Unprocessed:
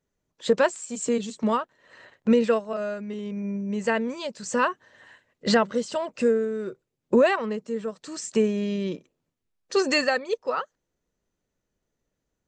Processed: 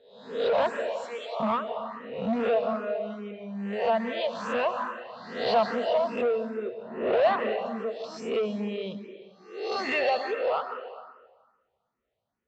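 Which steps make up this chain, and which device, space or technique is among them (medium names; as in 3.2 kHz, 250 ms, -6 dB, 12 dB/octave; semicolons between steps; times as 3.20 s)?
reverse spectral sustain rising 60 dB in 0.67 s; 0.88–1.40 s: inverse Chebyshev high-pass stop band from 240 Hz, stop band 40 dB; treble shelf 7.9 kHz +10.5 dB; plate-style reverb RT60 1.4 s, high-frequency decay 0.85×, pre-delay 120 ms, DRR 8 dB; barber-pole phaser into a guitar amplifier (barber-pole phaser +2.4 Hz; saturation -21 dBFS, distortion -11 dB; cabinet simulation 98–3700 Hz, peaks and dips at 160 Hz -9 dB, 300 Hz -10 dB, 700 Hz +9 dB, 1.6 kHz -4 dB)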